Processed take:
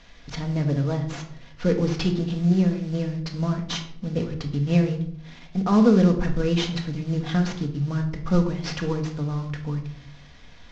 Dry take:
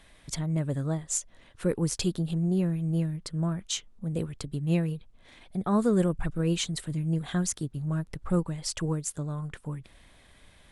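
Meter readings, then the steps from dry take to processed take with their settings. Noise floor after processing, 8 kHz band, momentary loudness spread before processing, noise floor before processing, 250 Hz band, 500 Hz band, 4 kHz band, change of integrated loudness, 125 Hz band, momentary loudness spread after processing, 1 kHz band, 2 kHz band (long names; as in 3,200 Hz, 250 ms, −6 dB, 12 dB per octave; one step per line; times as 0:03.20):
−46 dBFS, −9.5 dB, 8 LU, −58 dBFS, +6.5 dB, +6.0 dB, +3.5 dB, +5.5 dB, +5.0 dB, 12 LU, +6.0 dB, +7.0 dB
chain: variable-slope delta modulation 32 kbit/s
rectangular room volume 1,000 cubic metres, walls furnished, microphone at 1.8 metres
level +4 dB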